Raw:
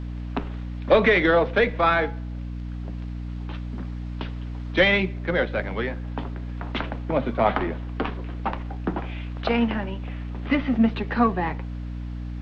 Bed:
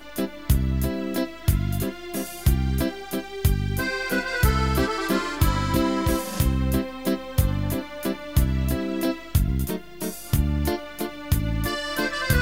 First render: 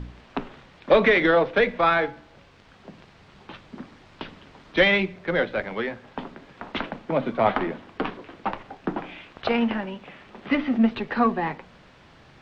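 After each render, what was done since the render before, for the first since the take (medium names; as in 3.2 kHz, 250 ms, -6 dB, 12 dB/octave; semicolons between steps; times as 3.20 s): de-hum 60 Hz, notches 5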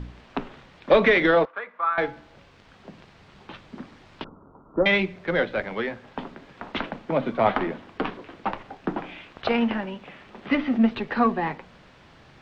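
1.45–1.98 s: band-pass filter 1.2 kHz, Q 4.3; 4.24–4.86 s: rippled Chebyshev low-pass 1.4 kHz, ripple 3 dB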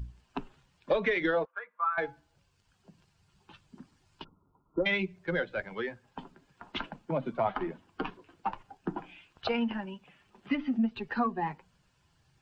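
expander on every frequency bin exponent 1.5; compression 3:1, threshold -27 dBFS, peak gain reduction 10.5 dB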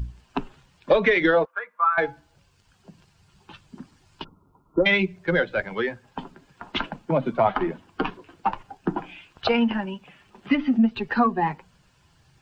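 trim +9 dB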